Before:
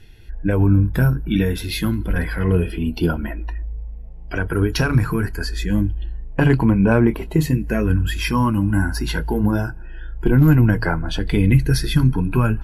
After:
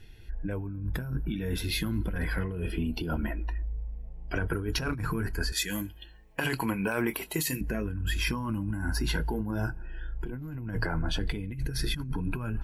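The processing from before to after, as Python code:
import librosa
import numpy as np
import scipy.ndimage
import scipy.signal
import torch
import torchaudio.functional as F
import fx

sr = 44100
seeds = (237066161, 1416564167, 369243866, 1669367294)

y = fx.tilt_eq(x, sr, slope=4.5, at=(5.52, 7.61))
y = fx.over_compress(y, sr, threshold_db=-22.0, ratio=-1.0)
y = y * 10.0 ** (-8.5 / 20.0)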